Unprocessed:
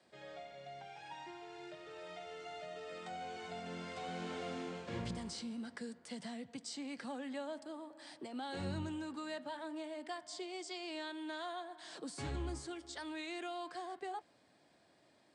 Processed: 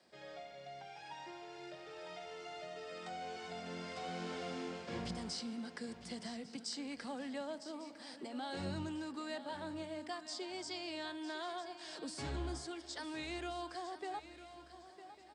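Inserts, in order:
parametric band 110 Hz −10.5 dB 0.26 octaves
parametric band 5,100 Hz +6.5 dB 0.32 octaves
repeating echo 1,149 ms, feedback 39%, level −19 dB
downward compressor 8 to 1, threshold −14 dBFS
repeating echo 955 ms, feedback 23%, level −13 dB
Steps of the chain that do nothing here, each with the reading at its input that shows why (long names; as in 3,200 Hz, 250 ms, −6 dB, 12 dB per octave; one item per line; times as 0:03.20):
downward compressor, threshold −14 dBFS: peak of its input −29.5 dBFS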